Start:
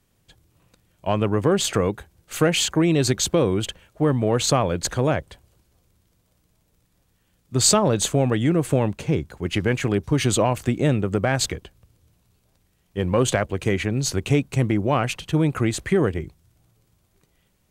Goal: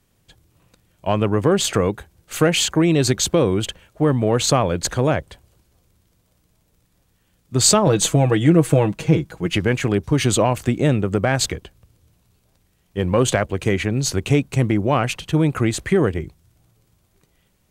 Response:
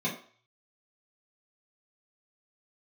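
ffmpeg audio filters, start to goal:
-filter_complex "[0:a]asettb=1/sr,asplit=3[link_01][link_02][link_03];[link_01]atrim=end=7.864[link_04];[link_02]atrim=start=7.86:end=9.57,asetpts=PTS-STARTPTS,afade=type=in:duration=0.004:curve=qsin,afade=type=out:start_time=1.706:duration=0.004:curve=qsin,aecho=1:1:6.2:0.69,atrim=end_sample=75411[link_05];[link_03]atrim=start=9.566[link_06];[link_04][link_05]acrossfade=duration=0.004:curve1=hsin:curve2=qsin[link_07];[link_07][link_06]acrossfade=duration=0.004:curve1=qsin:curve2=hsin,volume=2.5dB"

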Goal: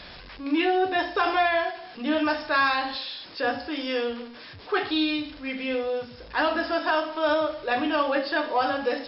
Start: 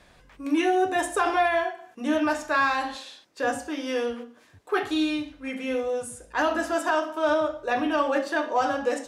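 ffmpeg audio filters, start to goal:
ffmpeg -i in.wav -af "aeval=exprs='val(0)+0.5*0.00944*sgn(val(0))':channel_layout=same,aemphasis=mode=production:type=75fm" -ar 12000 -c:a libmp3lame -b:a 64k out.mp3

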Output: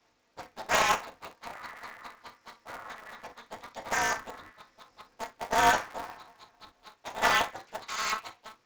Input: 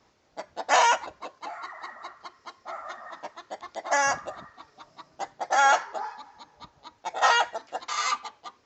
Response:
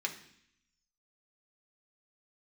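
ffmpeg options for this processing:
-filter_complex "[1:a]atrim=start_sample=2205,atrim=end_sample=3087[link_01];[0:a][link_01]afir=irnorm=-1:irlink=0,aeval=exprs='val(0)*sgn(sin(2*PI*110*n/s))':channel_layout=same,volume=-6dB"

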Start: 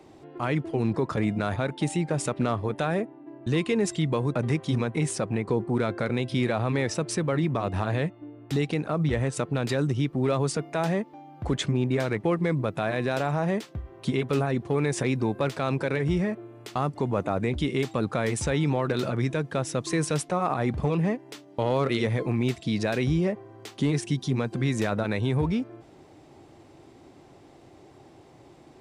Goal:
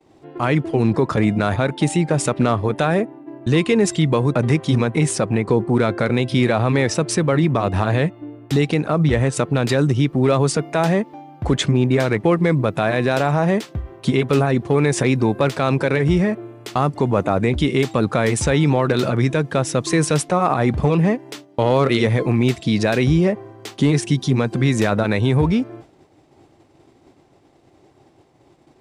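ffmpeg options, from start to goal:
ffmpeg -i in.wav -af "agate=range=-33dB:threshold=-43dB:ratio=3:detection=peak,volume=8.5dB" out.wav

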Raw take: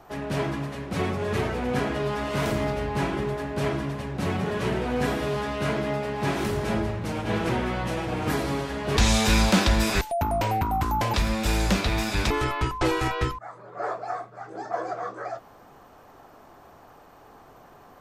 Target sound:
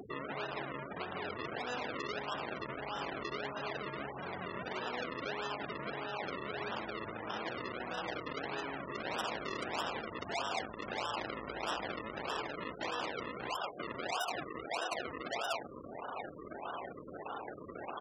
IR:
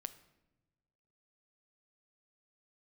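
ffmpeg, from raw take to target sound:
-af "aecho=1:1:87.46|180.8:0.355|0.708,aresample=11025,aeval=exprs='(mod(6.31*val(0)+1,2)-1)/6.31':channel_layout=same,aresample=44100,acrusher=samples=39:mix=1:aa=0.000001:lfo=1:lforange=39:lforate=1.6,areverse,acompressor=threshold=-40dB:ratio=5,areverse,afftfilt=real='re*gte(hypot(re,im),0.00501)':imag='im*gte(hypot(re,im),0.00501)':win_size=1024:overlap=0.75,alimiter=level_in=13.5dB:limit=-24dB:level=0:latency=1:release=38,volume=-13.5dB,highpass=frequency=1300:poles=1,acompressor=mode=upward:threshold=-55dB:ratio=2.5,volume=14dB"

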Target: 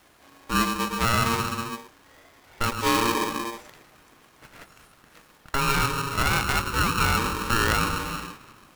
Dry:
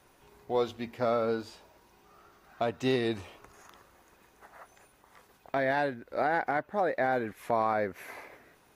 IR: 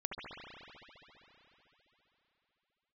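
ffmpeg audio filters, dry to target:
-filter_complex "[0:a]asplit=2[link_01][link_02];[link_02]lowshelf=frequency=800:width_type=q:width=1.5:gain=12[link_03];[1:a]atrim=start_sample=2205,afade=type=out:start_time=0.4:duration=0.01,atrim=end_sample=18081,adelay=109[link_04];[link_03][link_04]afir=irnorm=-1:irlink=0,volume=-17dB[link_05];[link_01][link_05]amix=inputs=2:normalize=0,aeval=exprs='val(0)*sgn(sin(2*PI*690*n/s))':channel_layout=same,volume=4.5dB"

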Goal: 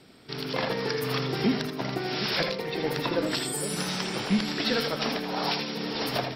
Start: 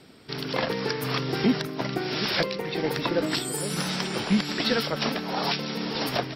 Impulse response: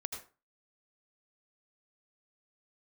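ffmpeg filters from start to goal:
-filter_complex "[0:a]bandreject=frequency=82.73:width_type=h:width=4,bandreject=frequency=165.46:width_type=h:width=4,bandreject=frequency=248.19:width_type=h:width=4,bandreject=frequency=330.92:width_type=h:width=4,bandreject=frequency=413.65:width_type=h:width=4,bandreject=frequency=496.38:width_type=h:width=4,bandreject=frequency=579.11:width_type=h:width=4,bandreject=frequency=661.84:width_type=h:width=4,bandreject=frequency=744.57:width_type=h:width=4,bandreject=frequency=827.3:width_type=h:width=4,bandreject=frequency=910.03:width_type=h:width=4,bandreject=frequency=992.76:width_type=h:width=4,bandreject=frequency=1075.49:width_type=h:width=4,bandreject=frequency=1158.22:width_type=h:width=4,bandreject=frequency=1240.95:width_type=h:width=4,bandreject=frequency=1323.68:width_type=h:width=4,bandreject=frequency=1406.41:width_type=h:width=4,bandreject=frequency=1489.14:width_type=h:width=4,bandreject=frequency=1571.87:width_type=h:width=4,bandreject=frequency=1654.6:width_type=h:width=4,bandreject=frequency=1737.33:width_type=h:width=4,bandreject=frequency=1820.06:width_type=h:width=4,bandreject=frequency=1902.79:width_type=h:width=4,bandreject=frequency=1985.52:width_type=h:width=4,bandreject=frequency=2068.25:width_type=h:width=4,bandreject=frequency=2150.98:width_type=h:width=4,bandreject=frequency=2233.71:width_type=h:width=4,bandreject=frequency=2316.44:width_type=h:width=4,bandreject=frequency=2399.17:width_type=h:width=4[link_01];[1:a]atrim=start_sample=2205,atrim=end_sample=3969[link_02];[link_01][link_02]afir=irnorm=-1:irlink=0"

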